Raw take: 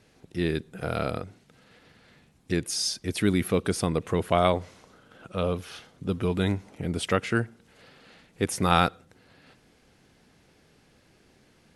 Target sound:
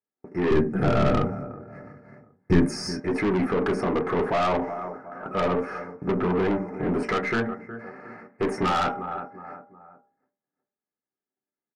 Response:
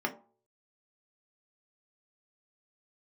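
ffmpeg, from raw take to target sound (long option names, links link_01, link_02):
-filter_complex "[0:a]aresample=22050,aresample=44100,asplit=2[link_01][link_02];[link_02]highpass=frequency=720:poles=1,volume=13dB,asoftclip=type=tanh:threshold=-4.5dB[link_03];[link_01][link_03]amix=inputs=2:normalize=0,lowpass=frequency=2300:poles=1,volume=-6dB,agate=range=-46dB:threshold=-51dB:ratio=16:detection=peak,asplit=2[link_04][link_05];[link_05]adelay=364,lowpass=frequency=2000:poles=1,volume=-20.5dB,asplit=2[link_06][link_07];[link_07]adelay=364,lowpass=frequency=2000:poles=1,volume=0.39,asplit=2[link_08][link_09];[link_09]adelay=364,lowpass=frequency=2000:poles=1,volume=0.39[link_10];[link_04][link_06][link_08][link_10]amix=inputs=4:normalize=0,alimiter=limit=-13.5dB:level=0:latency=1:release=109,asuperstop=centerf=3400:order=4:qfactor=0.97,highshelf=frequency=3400:gain=-7.5[link_11];[1:a]atrim=start_sample=2205[link_12];[link_11][link_12]afir=irnorm=-1:irlink=0,aeval=exprs='(tanh(11.2*val(0)+0.2)-tanh(0.2))/11.2':channel_layout=same,asettb=1/sr,asplit=3[link_13][link_14][link_15];[link_13]atrim=end=0.514[link_16];[link_14]atrim=start=0.51:end=3,asetpts=PTS-STARTPTS,afade=type=in:duration=0.004:curve=qsin,afade=type=out:start_time=2.486:duration=0.004:curve=qsin,bass=frequency=250:gain=14,treble=frequency=4000:gain=6[link_17];[link_15]atrim=start=2.996[link_18];[link_16][link_17]acrossfade=duration=0.004:curve1=hsin:curve2=qsin[link_19];[link_19][link_18]acrossfade=duration=0.004:curve1=qsin:curve2=hsin,volume=1dB"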